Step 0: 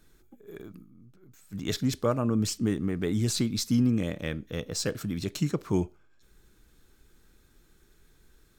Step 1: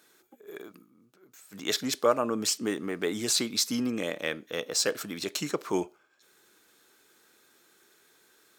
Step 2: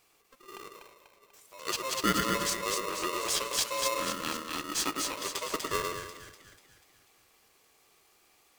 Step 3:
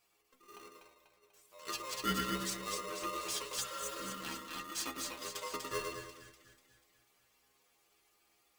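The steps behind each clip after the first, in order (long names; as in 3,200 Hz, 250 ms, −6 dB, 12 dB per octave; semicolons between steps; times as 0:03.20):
high-pass filter 450 Hz 12 dB per octave; level +5.5 dB
echo with a time of its own for lows and highs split 810 Hz, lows 105 ms, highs 245 ms, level −3 dB; ring modulator with a square carrier 790 Hz; level −4.5 dB
healed spectral selection 0:03.63–0:04.09, 560–5,900 Hz after; stiff-string resonator 61 Hz, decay 0.33 s, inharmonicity 0.008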